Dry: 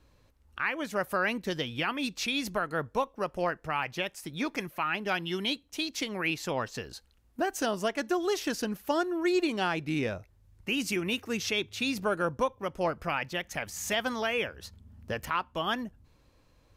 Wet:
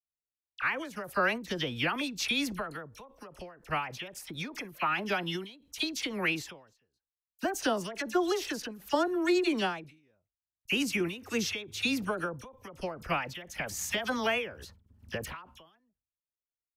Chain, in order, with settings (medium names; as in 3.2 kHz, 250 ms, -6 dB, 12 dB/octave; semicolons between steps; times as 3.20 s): gate -50 dBFS, range -50 dB; phase dispersion lows, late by 46 ms, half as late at 1.7 kHz; endings held to a fixed fall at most 110 dB/s; trim +1.5 dB